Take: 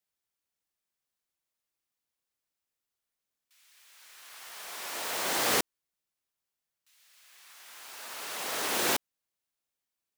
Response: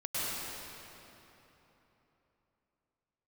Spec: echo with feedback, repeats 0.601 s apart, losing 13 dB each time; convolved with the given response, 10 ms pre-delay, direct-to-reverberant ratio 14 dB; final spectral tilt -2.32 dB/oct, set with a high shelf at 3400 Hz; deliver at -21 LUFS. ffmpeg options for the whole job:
-filter_complex "[0:a]highshelf=f=3.4k:g=-8,aecho=1:1:601|1202|1803:0.224|0.0493|0.0108,asplit=2[a][b];[1:a]atrim=start_sample=2205,adelay=10[c];[b][c]afir=irnorm=-1:irlink=0,volume=-21dB[d];[a][d]amix=inputs=2:normalize=0,volume=14.5dB"

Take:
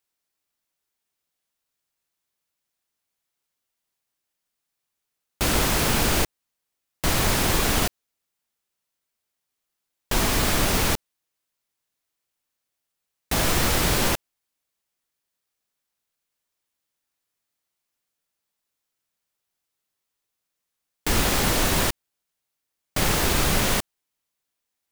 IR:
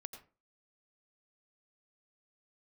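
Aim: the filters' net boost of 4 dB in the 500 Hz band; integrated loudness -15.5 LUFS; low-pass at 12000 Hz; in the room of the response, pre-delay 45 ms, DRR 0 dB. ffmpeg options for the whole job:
-filter_complex "[0:a]lowpass=12k,equalizer=f=500:t=o:g=5,asplit=2[a][b];[1:a]atrim=start_sample=2205,adelay=45[c];[b][c]afir=irnorm=-1:irlink=0,volume=4dB[d];[a][d]amix=inputs=2:normalize=0,volume=4dB"

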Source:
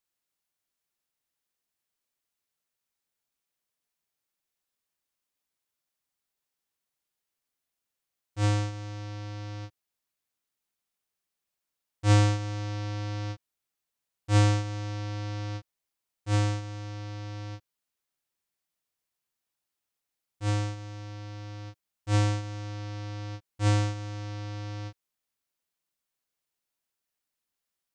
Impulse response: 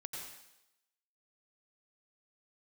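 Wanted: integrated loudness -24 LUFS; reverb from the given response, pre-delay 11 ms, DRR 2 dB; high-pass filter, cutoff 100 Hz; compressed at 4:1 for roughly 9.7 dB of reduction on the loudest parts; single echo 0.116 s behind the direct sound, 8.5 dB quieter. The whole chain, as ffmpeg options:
-filter_complex "[0:a]highpass=100,acompressor=threshold=-28dB:ratio=4,aecho=1:1:116:0.376,asplit=2[a][b];[1:a]atrim=start_sample=2205,adelay=11[c];[b][c]afir=irnorm=-1:irlink=0,volume=-0.5dB[d];[a][d]amix=inputs=2:normalize=0,volume=12dB"

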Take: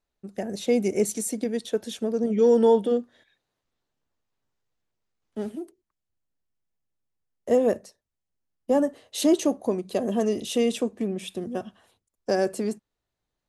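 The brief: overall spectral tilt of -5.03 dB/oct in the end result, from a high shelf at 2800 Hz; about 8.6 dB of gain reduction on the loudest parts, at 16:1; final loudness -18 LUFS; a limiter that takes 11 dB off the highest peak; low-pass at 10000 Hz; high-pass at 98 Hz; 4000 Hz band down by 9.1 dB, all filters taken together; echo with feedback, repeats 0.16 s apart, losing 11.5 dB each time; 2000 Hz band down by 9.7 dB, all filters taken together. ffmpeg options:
-af "highpass=98,lowpass=10k,equalizer=f=2k:t=o:g=-9,highshelf=f=2.8k:g=-6,equalizer=f=4k:t=o:g=-3.5,acompressor=threshold=-23dB:ratio=16,alimiter=level_in=2dB:limit=-24dB:level=0:latency=1,volume=-2dB,aecho=1:1:160|320|480:0.266|0.0718|0.0194,volume=17.5dB"

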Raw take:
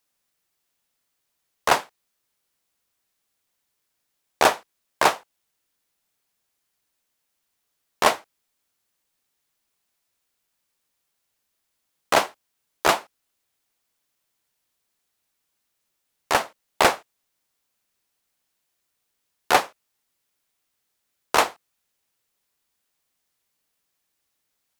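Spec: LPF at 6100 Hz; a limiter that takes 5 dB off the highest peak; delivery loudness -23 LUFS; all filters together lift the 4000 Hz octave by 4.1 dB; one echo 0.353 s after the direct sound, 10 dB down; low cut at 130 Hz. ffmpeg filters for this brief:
-af "highpass=130,lowpass=6.1k,equalizer=f=4k:t=o:g=6,alimiter=limit=-6dB:level=0:latency=1,aecho=1:1:353:0.316,volume=2.5dB"

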